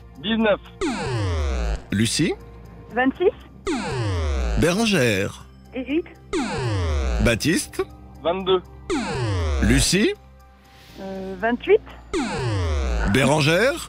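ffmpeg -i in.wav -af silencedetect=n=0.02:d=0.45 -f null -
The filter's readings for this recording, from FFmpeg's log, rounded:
silence_start: 10.14
silence_end: 10.90 | silence_duration: 0.76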